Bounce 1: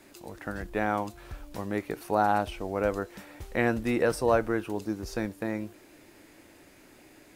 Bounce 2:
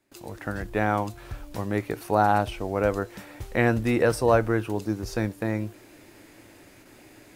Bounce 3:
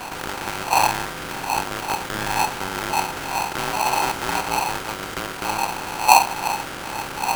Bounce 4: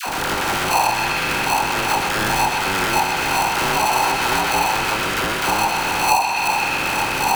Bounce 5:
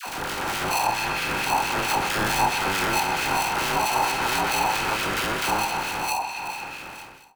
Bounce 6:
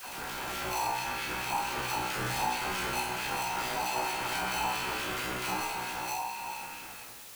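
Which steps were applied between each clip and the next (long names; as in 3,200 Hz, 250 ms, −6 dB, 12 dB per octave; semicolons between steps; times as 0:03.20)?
noise gate with hold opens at −45 dBFS; parametric band 110 Hz +9 dB 0.25 octaves; level +3.5 dB
compressor on every frequency bin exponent 0.2; wind on the microphone 96 Hz −12 dBFS; ring modulator with a square carrier 860 Hz; level −12.5 dB
feedback echo with a band-pass in the loop 126 ms, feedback 79%, band-pass 2,400 Hz, level −4.5 dB; downward compressor 5 to 1, threshold −23 dBFS, peak gain reduction 14.5 dB; all-pass dispersion lows, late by 70 ms, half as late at 730 Hz; level +8 dB
fade-out on the ending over 2.16 s; automatic gain control gain up to 5 dB; two-band tremolo in antiphase 4.5 Hz, depth 50%, crossover 1,800 Hz; level −5.5 dB
tuned comb filter 62 Hz, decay 0.51 s, harmonics all, mix 90%; in parallel at −9.5 dB: bit-depth reduction 6 bits, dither triangular; on the sum: level −2.5 dB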